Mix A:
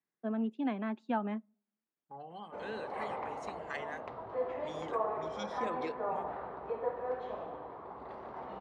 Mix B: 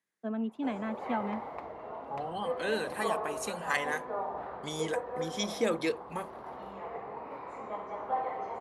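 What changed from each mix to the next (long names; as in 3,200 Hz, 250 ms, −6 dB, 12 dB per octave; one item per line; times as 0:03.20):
second voice +9.5 dB
background: entry −1.90 s
master: remove high-frequency loss of the air 120 metres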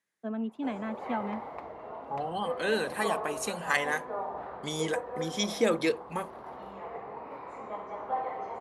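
second voice +3.5 dB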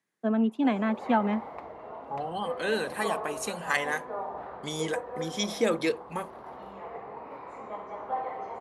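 first voice +8.5 dB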